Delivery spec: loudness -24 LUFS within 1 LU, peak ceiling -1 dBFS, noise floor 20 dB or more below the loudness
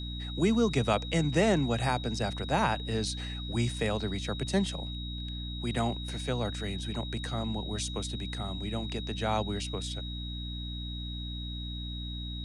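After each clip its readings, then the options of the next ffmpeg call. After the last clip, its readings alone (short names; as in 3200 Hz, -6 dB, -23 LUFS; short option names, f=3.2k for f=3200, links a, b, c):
hum 60 Hz; harmonics up to 300 Hz; hum level -35 dBFS; steady tone 3800 Hz; tone level -41 dBFS; loudness -32.0 LUFS; peak -13.5 dBFS; loudness target -24.0 LUFS
-> -af "bandreject=f=60:t=h:w=4,bandreject=f=120:t=h:w=4,bandreject=f=180:t=h:w=4,bandreject=f=240:t=h:w=4,bandreject=f=300:t=h:w=4"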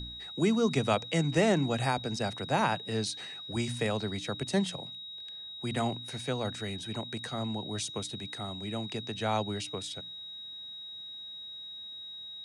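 hum none; steady tone 3800 Hz; tone level -41 dBFS
-> -af "bandreject=f=3.8k:w=30"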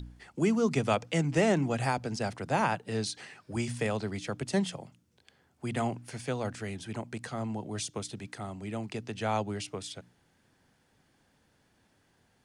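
steady tone none; loudness -32.5 LUFS; peak -13.5 dBFS; loudness target -24.0 LUFS
-> -af "volume=8.5dB"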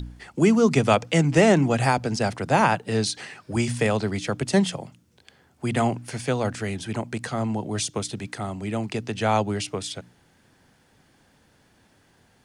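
loudness -24.0 LUFS; peak -5.0 dBFS; noise floor -61 dBFS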